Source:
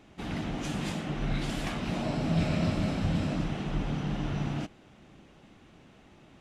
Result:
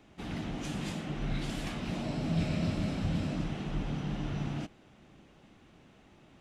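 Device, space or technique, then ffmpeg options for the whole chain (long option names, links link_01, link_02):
one-band saturation: -filter_complex "[0:a]acrossover=split=490|2100[link_01][link_02][link_03];[link_02]asoftclip=type=tanh:threshold=-39.5dB[link_04];[link_01][link_04][link_03]amix=inputs=3:normalize=0,volume=-3dB"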